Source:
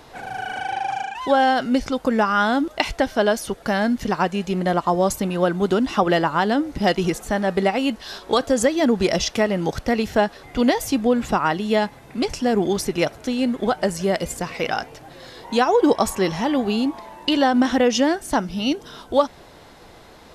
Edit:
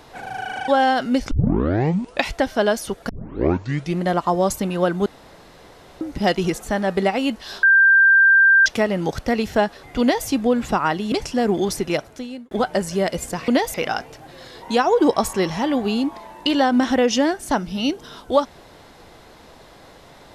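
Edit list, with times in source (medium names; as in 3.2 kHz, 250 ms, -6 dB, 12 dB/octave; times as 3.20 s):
0.68–1.28 s: delete
1.91 s: tape start 0.99 s
3.69 s: tape start 0.91 s
5.66–6.61 s: room tone
8.23–9.26 s: bleep 1.58 kHz -9.5 dBFS
10.61–10.87 s: copy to 14.56 s
11.72–12.20 s: delete
12.91–13.59 s: fade out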